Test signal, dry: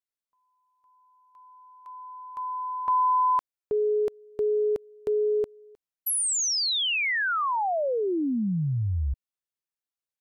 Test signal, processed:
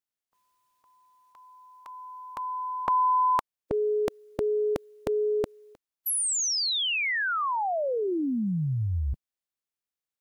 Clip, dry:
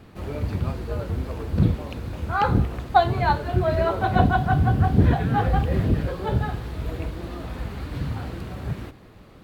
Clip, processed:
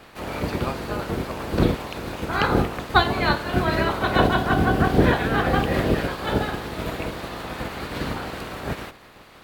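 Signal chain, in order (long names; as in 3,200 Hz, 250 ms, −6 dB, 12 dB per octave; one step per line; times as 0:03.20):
ceiling on every frequency bin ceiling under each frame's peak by 19 dB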